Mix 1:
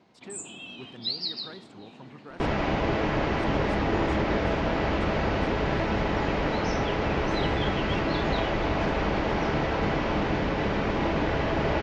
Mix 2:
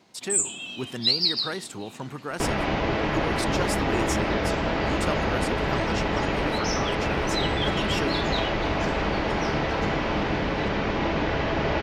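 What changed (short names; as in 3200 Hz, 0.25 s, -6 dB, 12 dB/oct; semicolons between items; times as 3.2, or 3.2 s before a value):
speech +11.0 dB; second sound: add air absorption 150 m; master: remove tape spacing loss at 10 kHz 20 dB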